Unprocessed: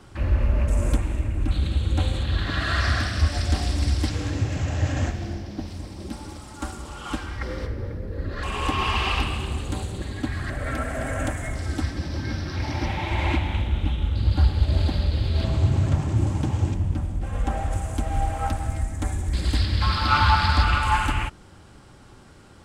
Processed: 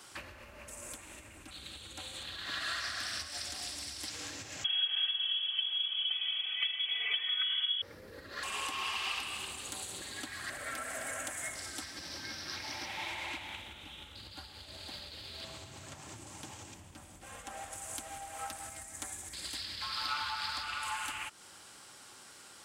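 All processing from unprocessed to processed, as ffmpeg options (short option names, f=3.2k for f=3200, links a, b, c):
-filter_complex "[0:a]asettb=1/sr,asplit=3[a][b][c];[a]atrim=end=4.644[d];[b]atrim=start=4.64:end=7.82,asetpts=PTS-STARTPTS,afade=t=in:d=0.004:c=qsin,afade=t=out:st=3.176:d=0.004:c=qsin,aecho=1:1:2.7:0.99,atrim=end_sample=140238,lowpass=f=2.9k:t=q:w=0.5098,lowpass=f=2.9k:t=q:w=0.6013,lowpass=f=2.9k:t=q:w=0.9,lowpass=f=2.9k:t=q:w=2.563,afreqshift=-3400[e];[c]atrim=start=7.816[f];[d][e]acrossfade=d=0.004:c1=hsin:c2=qsin[g];[g][f]acrossfade=d=0.004:c1=qsin:c2=hsin,highshelf=f=5k:g=11.5,acompressor=threshold=-30dB:ratio=6,highpass=f=1.3k:p=1"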